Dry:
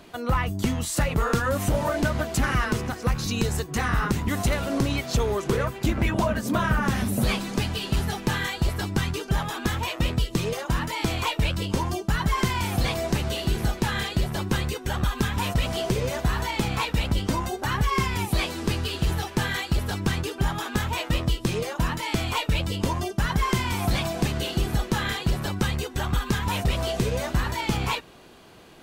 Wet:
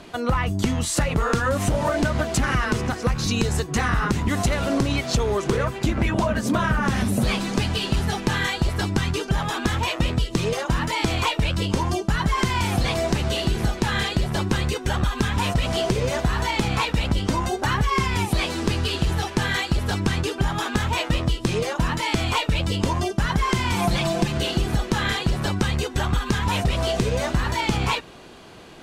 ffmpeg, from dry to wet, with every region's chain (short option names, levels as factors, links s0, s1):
-filter_complex "[0:a]asettb=1/sr,asplit=3[s0][s1][s2];[s0]atrim=end=23.764[s3];[s1]atrim=start=23.76:end=24.37,asetpts=PTS-STARTPTS,afade=t=in:d=0.004:c=qsin,afade=t=out:st=0.606:d=0.004:c=qsin,aeval=exprs='sgn(val(0))*max(abs(val(0))-0.00398,0)':c=same,aecho=1:1:5.8:0.73,atrim=end_sample=26901[s4];[s2]atrim=start=24.366[s5];[s3][s4]acrossfade=d=0.004:c1=hsin:c2=qsin[s6];[s6][s5]acrossfade=d=0.004:c1=qsin:c2=hsin,lowpass=9800,acompressor=threshold=0.0708:ratio=6,volume=1.88"